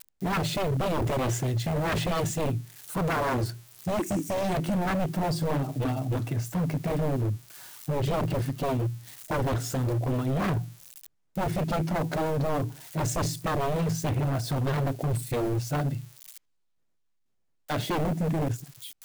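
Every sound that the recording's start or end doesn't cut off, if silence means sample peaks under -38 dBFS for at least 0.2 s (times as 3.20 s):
11.35–16.38 s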